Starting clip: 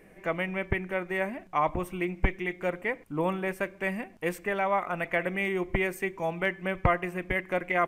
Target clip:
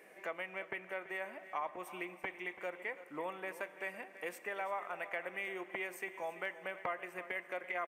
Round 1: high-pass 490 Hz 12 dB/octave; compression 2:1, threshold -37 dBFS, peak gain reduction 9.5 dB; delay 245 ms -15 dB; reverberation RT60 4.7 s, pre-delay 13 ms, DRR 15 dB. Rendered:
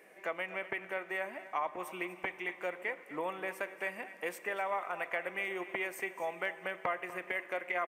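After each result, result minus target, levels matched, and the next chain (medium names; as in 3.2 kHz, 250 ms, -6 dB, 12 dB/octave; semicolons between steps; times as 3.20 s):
echo 89 ms early; compression: peak gain reduction -4 dB
high-pass 490 Hz 12 dB/octave; compression 2:1, threshold -37 dBFS, peak gain reduction 9.5 dB; delay 334 ms -15 dB; reverberation RT60 4.7 s, pre-delay 13 ms, DRR 15 dB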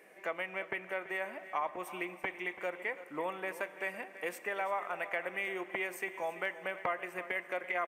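compression: peak gain reduction -4 dB
high-pass 490 Hz 12 dB/octave; compression 2:1, threshold -45.5 dBFS, peak gain reduction 13.5 dB; delay 334 ms -15 dB; reverberation RT60 4.7 s, pre-delay 13 ms, DRR 15 dB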